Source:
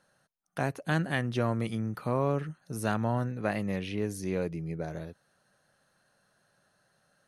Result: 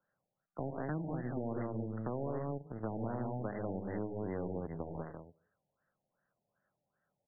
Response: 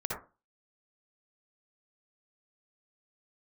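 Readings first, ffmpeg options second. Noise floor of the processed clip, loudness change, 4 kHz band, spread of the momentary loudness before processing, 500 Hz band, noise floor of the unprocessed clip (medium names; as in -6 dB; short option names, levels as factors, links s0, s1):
under -85 dBFS, -8.0 dB, under -35 dB, 8 LU, -6.5 dB, -72 dBFS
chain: -filter_complex "[0:a]asplit=2[s0][s1];[1:a]atrim=start_sample=2205,adelay=89[s2];[s1][s2]afir=irnorm=-1:irlink=0,volume=0.0668[s3];[s0][s3]amix=inputs=2:normalize=0,aeval=exprs='0.168*(cos(1*acos(clip(val(0)/0.168,-1,1)))-cos(1*PI/2))+0.0211*(cos(7*acos(clip(val(0)/0.168,-1,1)))-cos(7*PI/2))':c=same,asplit=2[s4][s5];[s5]aecho=0:1:72.89|137|192.4:0.251|0.282|0.631[s6];[s4][s6]amix=inputs=2:normalize=0,acrossover=split=130|610[s7][s8][s9];[s7]acompressor=threshold=0.00708:ratio=4[s10];[s8]acompressor=threshold=0.0251:ratio=4[s11];[s9]acompressor=threshold=0.00631:ratio=4[s12];[s10][s11][s12]amix=inputs=3:normalize=0,lowpass=f=3800:t=q:w=2.7,acompressor=threshold=0.00631:ratio=2,volume=44.7,asoftclip=hard,volume=0.0224,afftfilt=real='re*lt(b*sr/1024,900*pow(2100/900,0.5+0.5*sin(2*PI*2.6*pts/sr)))':imag='im*lt(b*sr/1024,900*pow(2100/900,0.5+0.5*sin(2*PI*2.6*pts/sr)))':win_size=1024:overlap=0.75,volume=1.58"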